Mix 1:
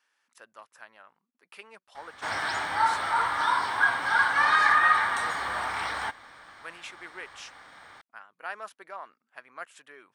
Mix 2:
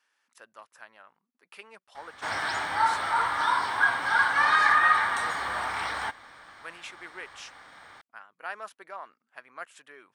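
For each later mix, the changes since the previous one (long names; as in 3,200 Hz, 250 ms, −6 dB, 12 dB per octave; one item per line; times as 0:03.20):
nothing changed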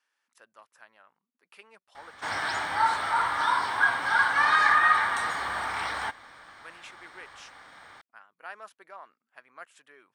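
speech −5.0 dB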